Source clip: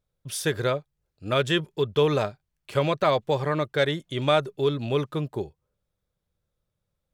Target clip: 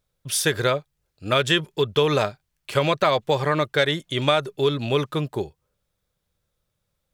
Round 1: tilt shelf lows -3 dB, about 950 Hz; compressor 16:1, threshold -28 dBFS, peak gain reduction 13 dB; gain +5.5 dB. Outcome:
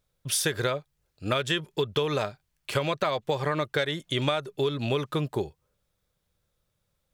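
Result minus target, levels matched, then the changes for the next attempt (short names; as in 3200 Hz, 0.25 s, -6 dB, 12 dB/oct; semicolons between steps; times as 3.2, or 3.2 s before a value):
compressor: peak gain reduction +8 dB
change: compressor 16:1, threshold -19.5 dBFS, peak gain reduction 5 dB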